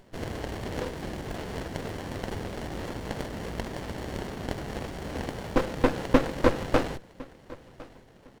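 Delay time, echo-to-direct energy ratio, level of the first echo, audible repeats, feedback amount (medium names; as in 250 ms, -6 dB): 1057 ms, -21.5 dB, -21.5 dB, 2, 24%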